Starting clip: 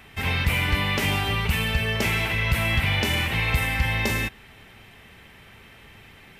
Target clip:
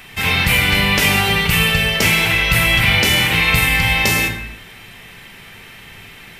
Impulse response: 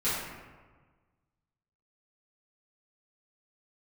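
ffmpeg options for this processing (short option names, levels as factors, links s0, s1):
-filter_complex "[0:a]highshelf=f=2200:g=8.5,asplit=2[s0][s1];[1:a]atrim=start_sample=2205,afade=t=out:st=0.36:d=0.01,atrim=end_sample=16317[s2];[s1][s2]afir=irnorm=-1:irlink=0,volume=0.266[s3];[s0][s3]amix=inputs=2:normalize=0,volume=1.5"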